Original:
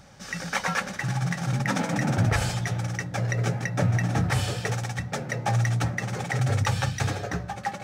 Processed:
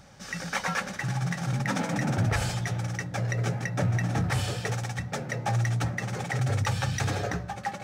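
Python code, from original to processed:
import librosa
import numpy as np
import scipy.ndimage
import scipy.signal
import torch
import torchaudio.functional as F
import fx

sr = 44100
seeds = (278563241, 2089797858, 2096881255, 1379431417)

p1 = 10.0 ** (-22.0 / 20.0) * np.tanh(x / 10.0 ** (-22.0 / 20.0))
p2 = x + (p1 * librosa.db_to_amplitude(-3.0))
p3 = fx.env_flatten(p2, sr, amount_pct=50, at=(6.88, 7.32))
y = p3 * librosa.db_to_amplitude(-6.0)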